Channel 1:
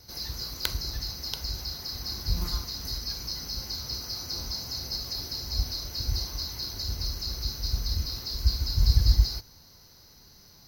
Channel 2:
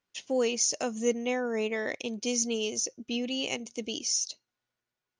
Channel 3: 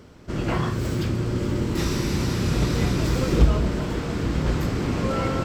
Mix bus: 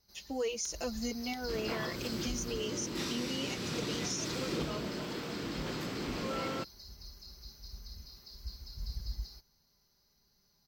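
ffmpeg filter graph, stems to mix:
ffmpeg -i stem1.wav -i stem2.wav -i stem3.wav -filter_complex "[0:a]aecho=1:1:5:0.5,volume=-10.5dB,afade=type=in:start_time=0.6:duration=0.45:silence=0.334965,afade=type=out:start_time=2.35:duration=0.48:silence=0.375837[link_01];[1:a]asplit=2[link_02][link_03];[link_03]adelay=5.1,afreqshift=0.89[link_04];[link_02][link_04]amix=inputs=2:normalize=1,volume=-3dB[link_05];[2:a]highpass=190,equalizer=frequency=3800:width=0.84:gain=6.5,asoftclip=type=tanh:threshold=-16dB,adelay=1200,volume=-10dB[link_06];[link_01][link_05][link_06]amix=inputs=3:normalize=0,alimiter=level_in=2dB:limit=-24dB:level=0:latency=1:release=121,volume=-2dB" out.wav

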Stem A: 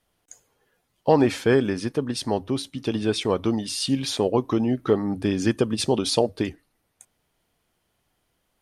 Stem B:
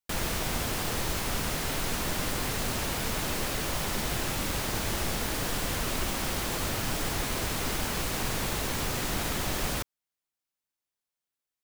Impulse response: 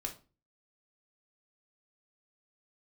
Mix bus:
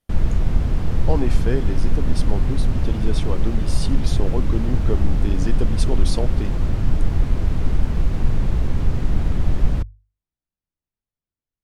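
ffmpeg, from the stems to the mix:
-filter_complex "[0:a]highshelf=frequency=5000:gain=5.5,volume=-9.5dB[link_01];[1:a]aemphasis=mode=reproduction:type=riaa,bandreject=frequency=50:width_type=h:width=6,bandreject=frequency=100:width_type=h:width=6,volume=-5dB[link_02];[link_01][link_02]amix=inputs=2:normalize=0,lowshelf=frequency=370:gain=7"

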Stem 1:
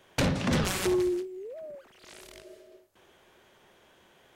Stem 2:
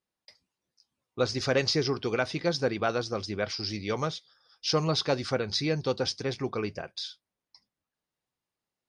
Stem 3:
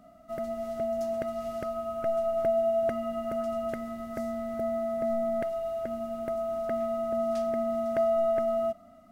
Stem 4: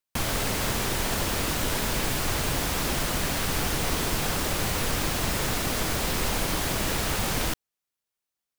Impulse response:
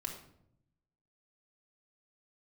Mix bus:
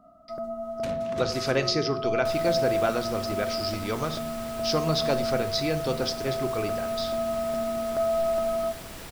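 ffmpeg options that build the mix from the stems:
-filter_complex "[0:a]adelay=650,volume=-12dB[link_01];[1:a]volume=-3dB,asplit=2[link_02][link_03];[link_03]volume=-4dB[link_04];[2:a]highshelf=frequency=1600:width_type=q:width=3:gain=-8,volume=-4dB,asplit=2[link_05][link_06];[link_06]volume=-11.5dB[link_07];[3:a]bandreject=frequency=6500:width=26,adelay=2100,volume=-14dB[link_08];[4:a]atrim=start_sample=2205[link_09];[link_04][link_07]amix=inputs=2:normalize=0[link_10];[link_10][link_09]afir=irnorm=-1:irlink=0[link_11];[link_01][link_02][link_05][link_08][link_11]amix=inputs=5:normalize=0"

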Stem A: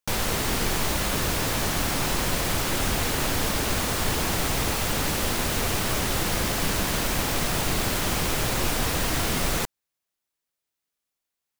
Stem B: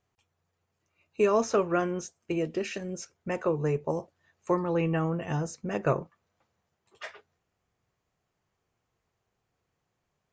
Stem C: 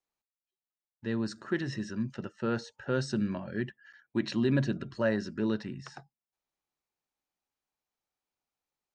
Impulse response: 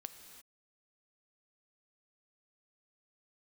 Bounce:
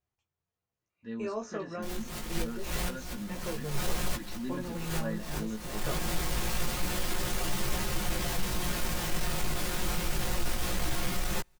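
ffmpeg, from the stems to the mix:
-filter_complex "[0:a]aecho=1:1:5.6:0.82,alimiter=limit=-19.5dB:level=0:latency=1:release=207,asoftclip=type=hard:threshold=-30dB,adelay=1750,volume=2dB,asplit=2[link_01][link_02];[link_02]volume=-22.5dB[link_03];[1:a]volume=-10.5dB,asplit=2[link_04][link_05];[link_05]volume=-9.5dB[link_06];[2:a]aecho=1:1:4.1:0.73,volume=-10dB,asplit=2[link_07][link_08];[link_08]apad=whole_len=588668[link_09];[link_01][link_09]sidechaincompress=threshold=-51dB:ratio=10:attack=16:release=156[link_10];[3:a]atrim=start_sample=2205[link_11];[link_03][link_06]amix=inputs=2:normalize=0[link_12];[link_12][link_11]afir=irnorm=-1:irlink=0[link_13];[link_10][link_04][link_07][link_13]amix=inputs=4:normalize=0,lowshelf=frequency=87:gain=9,flanger=delay=15:depth=3.9:speed=0.26"

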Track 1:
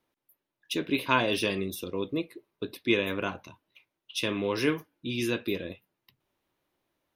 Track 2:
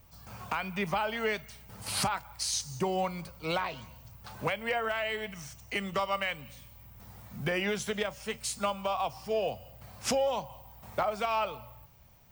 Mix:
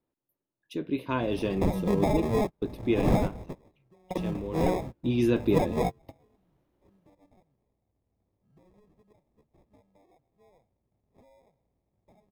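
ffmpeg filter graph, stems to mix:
ffmpeg -i stem1.wav -i stem2.wav -filter_complex "[0:a]dynaudnorm=framelen=890:gausssize=3:maxgain=8.5dB,volume=3.5dB,afade=type=out:start_time=2.63:duration=0.69:silence=0.266073,afade=type=in:start_time=4.81:duration=0.2:silence=0.251189,asplit=2[link_01][link_02];[1:a]highshelf=frequency=5800:gain=5.5,acrusher=samples=30:mix=1:aa=0.000001,adelay=1100,volume=0.5dB[link_03];[link_02]apad=whole_len=591497[link_04];[link_03][link_04]sidechaingate=range=-36dB:threshold=-57dB:ratio=16:detection=peak[link_05];[link_01][link_05]amix=inputs=2:normalize=0,tiltshelf=frequency=970:gain=8" out.wav

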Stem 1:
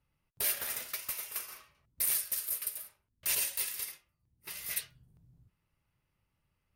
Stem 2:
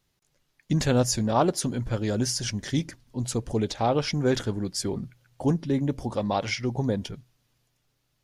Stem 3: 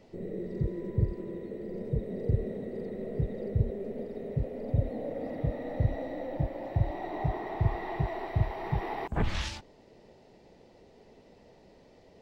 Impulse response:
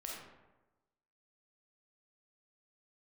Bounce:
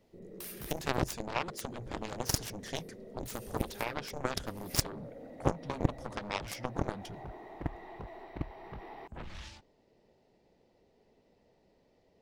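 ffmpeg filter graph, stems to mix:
-filter_complex "[0:a]acompressor=threshold=-34dB:ratio=3,volume=3dB,asplit=3[link_01][link_02][link_03];[link_01]atrim=end=1.15,asetpts=PTS-STARTPTS,afade=type=out:start_time=1.146:duration=0.004:curve=hsin[link_04];[link_02]atrim=start=1.15:end=2.75,asetpts=PTS-STARTPTS,volume=0[link_05];[link_03]atrim=start=2.75,asetpts=PTS-STARTPTS,afade=type=in:duration=0.004:curve=hsin[link_06];[link_04][link_05][link_06]concat=n=3:v=0:a=1[link_07];[1:a]volume=3dB,asplit=2[link_08][link_09];[2:a]volume=-2dB[link_10];[link_09]apad=whole_len=298082[link_11];[link_07][link_11]sidechaincompress=threshold=-28dB:ratio=8:attack=16:release=355[link_12];[link_12][link_08]amix=inputs=2:normalize=0,acompressor=threshold=-25dB:ratio=3,volume=0dB[link_13];[link_10][link_13]amix=inputs=2:normalize=0,aeval=exprs='0.188*(cos(1*acos(clip(val(0)/0.188,-1,1)))-cos(1*PI/2))+0.0841*(cos(3*acos(clip(val(0)/0.188,-1,1)))-cos(3*PI/2))':channel_layout=same"

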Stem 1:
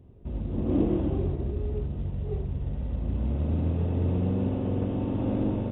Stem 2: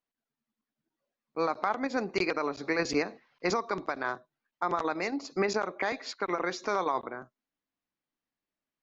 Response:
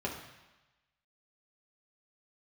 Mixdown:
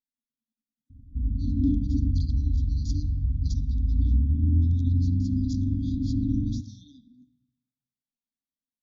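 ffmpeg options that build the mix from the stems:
-filter_complex "[0:a]tiltshelf=frequency=1400:gain=7.5,aecho=1:1:2.6:0.6,adelay=900,volume=-4dB,asplit=2[link_01][link_02];[link_02]volume=-18.5dB[link_03];[1:a]equalizer=frequency=2100:width_type=o:width=1.3:gain=6.5,volume=-7dB,asplit=2[link_04][link_05];[link_05]volume=-12dB[link_06];[2:a]atrim=start_sample=2205[link_07];[link_03][link_06]amix=inputs=2:normalize=0[link_08];[link_08][link_07]afir=irnorm=-1:irlink=0[link_09];[link_01][link_04][link_09]amix=inputs=3:normalize=0,equalizer=frequency=6000:width=4.4:gain=5.5,afftfilt=real='re*(1-between(b*sr/4096,300,3200))':imag='im*(1-between(b*sr/4096,300,3200))':win_size=4096:overlap=0.75,highshelf=frequency=2600:gain=-6.5"

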